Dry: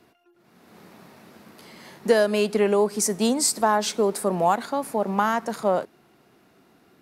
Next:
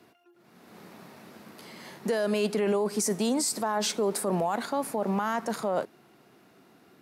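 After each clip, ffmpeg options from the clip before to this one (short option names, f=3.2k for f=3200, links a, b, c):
-af "highpass=92,alimiter=limit=-19dB:level=0:latency=1:release=14"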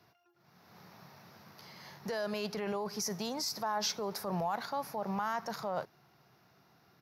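-af "firequalizer=gain_entry='entry(140,0);entry(240,-15);entry(820,-4);entry(3000,-8);entry(5600,1);entry(8300,-25);entry(12000,-4)':delay=0.05:min_phase=1"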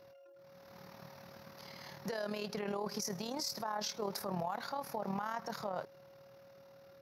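-af "tremolo=f=38:d=0.621,alimiter=level_in=7dB:limit=-24dB:level=0:latency=1:release=171,volume=-7dB,aeval=exprs='val(0)+0.001*sin(2*PI*550*n/s)':c=same,volume=3.5dB"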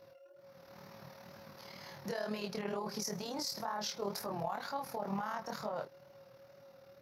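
-af "flanger=delay=18:depth=7.3:speed=2.1,volume=3dB"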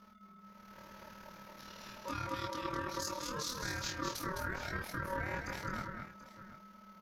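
-filter_complex "[0:a]aeval=exprs='val(0)*sin(2*PI*750*n/s)':c=same,asplit=2[a][b];[b]aecho=0:1:210|733:0.562|0.178[c];[a][c]amix=inputs=2:normalize=0,volume=1.5dB"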